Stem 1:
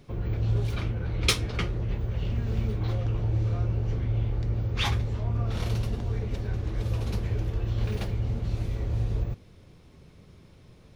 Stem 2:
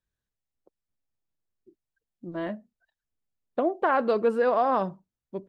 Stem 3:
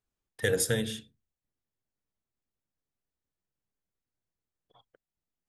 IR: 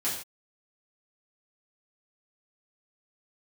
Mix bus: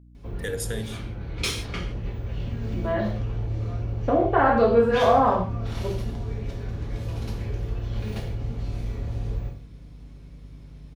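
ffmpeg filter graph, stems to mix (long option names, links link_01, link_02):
-filter_complex "[0:a]aeval=exprs='val(0)+0.00562*(sin(2*PI*50*n/s)+sin(2*PI*2*50*n/s)/2+sin(2*PI*3*50*n/s)/3+sin(2*PI*4*50*n/s)/4+sin(2*PI*5*50*n/s)/5)':channel_layout=same,adelay=150,volume=-6dB,asplit=2[link_01][link_02];[link_02]volume=-4dB[link_03];[1:a]highshelf=frequency=5200:gain=-10.5,adelay=500,volume=3dB,asplit=2[link_04][link_05];[link_05]volume=-5.5dB[link_06];[2:a]volume=-5.5dB,asplit=3[link_07][link_08][link_09];[link_08]volume=-17dB[link_10];[link_09]apad=whole_len=489575[link_11];[link_01][link_11]sidechaincompress=threshold=-48dB:ratio=8:attack=16:release=764[link_12];[link_12][link_04]amix=inputs=2:normalize=0,aeval=exprs='val(0)+0.00355*(sin(2*PI*60*n/s)+sin(2*PI*2*60*n/s)/2+sin(2*PI*3*60*n/s)/3+sin(2*PI*4*60*n/s)/4+sin(2*PI*5*60*n/s)/5)':channel_layout=same,acompressor=threshold=-30dB:ratio=6,volume=0dB[link_13];[3:a]atrim=start_sample=2205[link_14];[link_03][link_06][link_10]amix=inputs=3:normalize=0[link_15];[link_15][link_14]afir=irnorm=-1:irlink=0[link_16];[link_07][link_13][link_16]amix=inputs=3:normalize=0"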